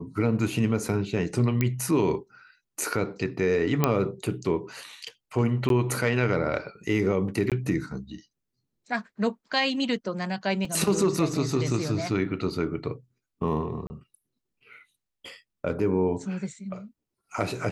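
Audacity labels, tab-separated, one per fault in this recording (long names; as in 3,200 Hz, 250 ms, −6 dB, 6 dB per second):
1.610000	1.610000	click −11 dBFS
3.840000	3.840000	click −6 dBFS
5.690000	5.700000	drop-out 12 ms
7.500000	7.520000	drop-out 17 ms
10.650000	10.650000	drop-out 3.5 ms
13.870000	13.900000	drop-out 30 ms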